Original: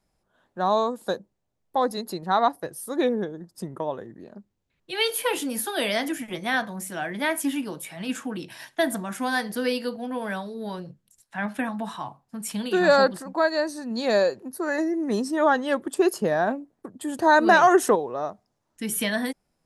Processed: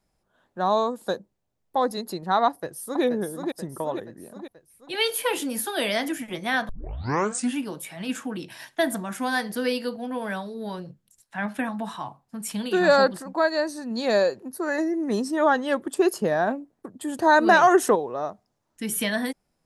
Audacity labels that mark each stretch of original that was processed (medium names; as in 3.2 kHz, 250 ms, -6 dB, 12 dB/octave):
2.470000	3.030000	echo throw 480 ms, feedback 55%, level -4.5 dB
6.690000	6.690000	tape start 0.88 s